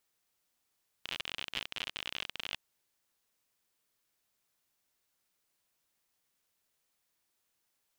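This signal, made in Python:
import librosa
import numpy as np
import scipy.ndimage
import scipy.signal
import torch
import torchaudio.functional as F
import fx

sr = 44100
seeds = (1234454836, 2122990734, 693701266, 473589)

y = fx.geiger_clicks(sr, seeds[0], length_s=1.52, per_s=51.0, level_db=-20.5)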